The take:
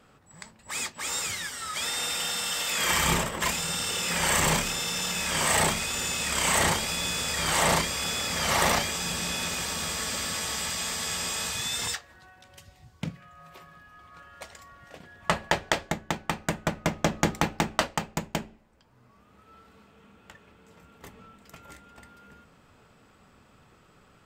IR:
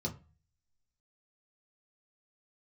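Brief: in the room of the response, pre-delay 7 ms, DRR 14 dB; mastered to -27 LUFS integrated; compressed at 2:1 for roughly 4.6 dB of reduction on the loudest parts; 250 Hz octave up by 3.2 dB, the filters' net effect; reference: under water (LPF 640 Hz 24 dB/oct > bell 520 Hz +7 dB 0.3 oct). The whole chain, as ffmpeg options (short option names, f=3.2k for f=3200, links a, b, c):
-filter_complex "[0:a]equalizer=f=250:t=o:g=4.5,acompressor=threshold=-29dB:ratio=2,asplit=2[a][b];[1:a]atrim=start_sample=2205,adelay=7[c];[b][c]afir=irnorm=-1:irlink=0,volume=-16dB[d];[a][d]amix=inputs=2:normalize=0,lowpass=f=640:w=0.5412,lowpass=f=640:w=1.3066,equalizer=f=520:t=o:w=0.3:g=7,volume=9.5dB"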